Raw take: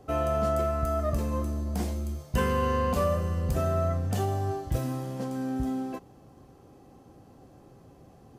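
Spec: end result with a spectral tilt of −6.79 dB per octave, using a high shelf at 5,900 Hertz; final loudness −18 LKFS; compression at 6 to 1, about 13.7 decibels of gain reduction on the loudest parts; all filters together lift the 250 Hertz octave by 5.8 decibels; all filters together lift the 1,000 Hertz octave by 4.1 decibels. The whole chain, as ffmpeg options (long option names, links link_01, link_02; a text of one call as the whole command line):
ffmpeg -i in.wav -af "equalizer=frequency=250:width_type=o:gain=6.5,equalizer=frequency=1000:width_type=o:gain=5,highshelf=frequency=5900:gain=-3.5,acompressor=threshold=-34dB:ratio=6,volume=19.5dB" out.wav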